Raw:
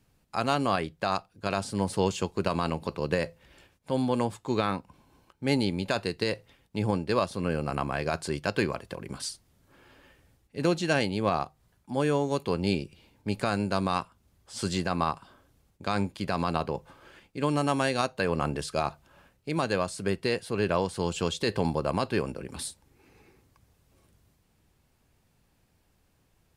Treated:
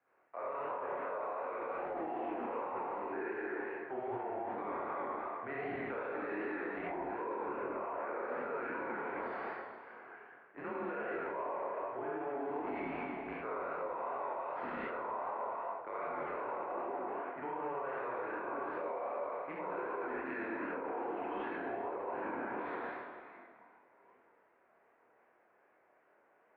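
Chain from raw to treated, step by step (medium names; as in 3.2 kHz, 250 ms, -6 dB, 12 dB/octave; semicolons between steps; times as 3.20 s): in parallel at -7.5 dB: Schmitt trigger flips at -33.5 dBFS; on the sum: reverberation RT60 1.7 s, pre-delay 47 ms, DRR -9 dB; mistuned SSB -140 Hz 550–2100 Hz; reverse; compression, threshold -29 dBFS, peak gain reduction 15 dB; reverse; peak limiter -30 dBFS, peak gain reduction 11 dB; chorus 2.6 Hz, depth 7.9 ms; trim +1.5 dB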